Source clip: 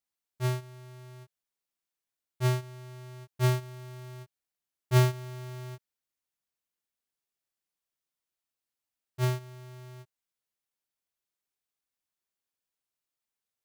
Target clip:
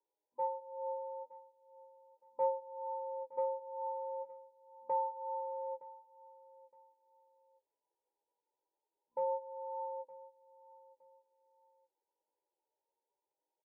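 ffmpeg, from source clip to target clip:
ffmpeg -i in.wav -filter_complex "[0:a]afftfilt=real='re*between(b*sr/4096,170,700)':imag='im*between(b*sr/4096,170,700)':win_size=4096:overlap=0.75,lowshelf=frequency=360:gain=-9,aecho=1:1:3:0.95,asplit=2[link_01][link_02];[link_02]alimiter=level_in=3.5dB:limit=-24dB:level=0:latency=1:release=351,volume=-3.5dB,volume=-2dB[link_03];[link_01][link_03]amix=inputs=2:normalize=0,acompressor=threshold=-46dB:ratio=4,asetrate=62367,aresample=44100,atempo=0.707107,flanger=delay=9.6:depth=2.8:regen=52:speed=0.29:shape=sinusoidal,aecho=1:1:916|1832:0.112|0.0314,volume=13.5dB" out.wav

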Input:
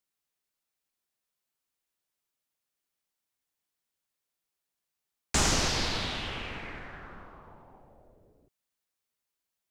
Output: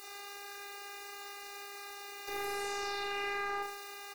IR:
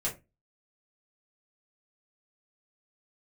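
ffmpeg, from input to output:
-filter_complex "[0:a]aeval=exprs='val(0)+0.5*0.0355*sgn(val(0))':channel_layout=same,highpass=frequency=120:poles=1,highshelf=frequency=2100:gain=-8.5,acompressor=threshold=-35dB:ratio=6,asplit=2[link_01][link_02];[link_02]asetrate=55563,aresample=44100,atempo=0.793701,volume=-4dB[link_03];[link_01][link_03]amix=inputs=2:normalize=0,afftfilt=real='hypot(re,im)*cos(PI*b)':imag='0':win_size=1024:overlap=0.75,asoftclip=type=tanh:threshold=-26dB,asuperstop=centerf=1400:order=8:qfactor=6.3,aecho=1:1:87|174|261|348|435|522|609|696:0.631|0.372|0.22|0.13|0.0765|0.0451|0.0266|0.0157,asetrate=103194,aresample=44100"

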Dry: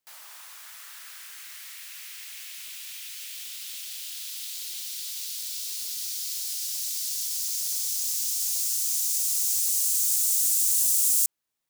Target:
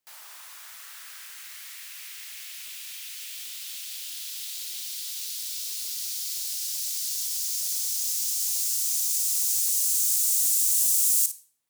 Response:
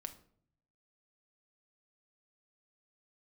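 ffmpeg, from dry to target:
-filter_complex "[0:a]asplit=2[link_01][link_02];[1:a]atrim=start_sample=2205,asetrate=34398,aresample=44100,adelay=56[link_03];[link_02][link_03]afir=irnorm=-1:irlink=0,volume=-7.5dB[link_04];[link_01][link_04]amix=inputs=2:normalize=0"

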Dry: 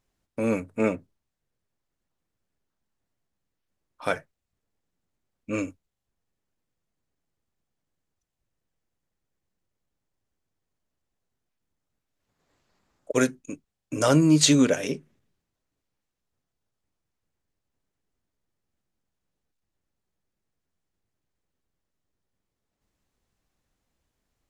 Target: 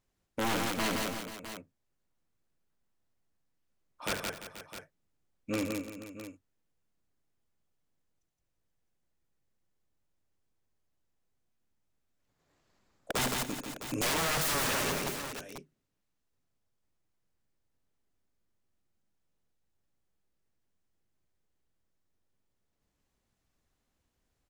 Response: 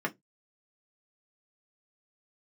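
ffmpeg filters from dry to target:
-af "aeval=exprs='(mod(9.44*val(0)+1,2)-1)/9.44':channel_layout=same,aecho=1:1:71|167|255|342|481|658:0.316|0.596|0.126|0.2|0.178|0.224,aeval=exprs='0.0794*(abs(mod(val(0)/0.0794+3,4)-2)-1)':channel_layout=same,volume=-3.5dB"

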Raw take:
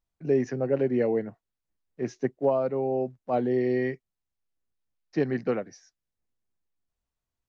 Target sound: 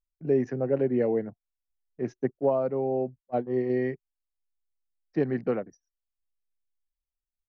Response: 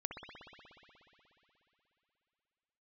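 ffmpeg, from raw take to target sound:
-filter_complex "[0:a]asettb=1/sr,asplit=3[link_01][link_02][link_03];[link_01]atrim=end=3.204[link_04];[link_02]atrim=start=3.2:end=3.7,asetpts=PTS-STARTPTS,afade=type=in:duration=0.004:curve=qsin,afade=type=out:start_time=0.496:duration=0.004:curve=qsin,agate=range=-22dB:threshold=-24dB:ratio=16:detection=peak[link_05];[link_03]atrim=start=3.696[link_06];[link_04][link_05]acrossfade=duration=0.004:curve1=hsin:curve2=qsin[link_07];[link_07][link_06]acrossfade=duration=0.004:curve1=qsin:curve2=hsin,anlmdn=0.01,highshelf=frequency=2700:gain=-11"

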